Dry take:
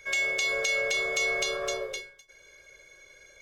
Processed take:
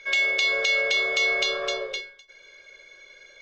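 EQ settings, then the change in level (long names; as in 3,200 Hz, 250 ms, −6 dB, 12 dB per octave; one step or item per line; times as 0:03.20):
low-pass with resonance 4,000 Hz, resonance Q 1.6
parametric band 62 Hz −13 dB 2.4 octaves
+3.0 dB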